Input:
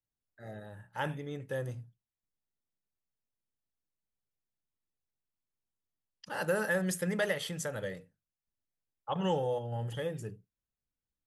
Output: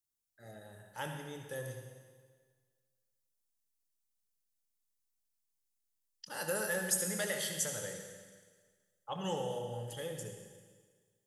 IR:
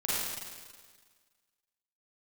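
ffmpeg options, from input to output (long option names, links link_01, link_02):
-filter_complex "[0:a]bass=frequency=250:gain=-2,treble=frequency=4000:gain=14,asplit=2[link_01][link_02];[1:a]atrim=start_sample=2205,adelay=25[link_03];[link_02][link_03]afir=irnorm=-1:irlink=0,volume=-11.5dB[link_04];[link_01][link_04]amix=inputs=2:normalize=0,volume=-6.5dB"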